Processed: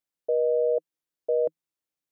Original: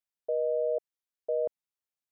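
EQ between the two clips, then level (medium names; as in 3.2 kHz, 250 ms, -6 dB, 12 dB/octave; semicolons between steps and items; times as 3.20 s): graphic EQ with 31 bands 160 Hz +8 dB, 315 Hz +10 dB, 500 Hz +5 dB; +1.5 dB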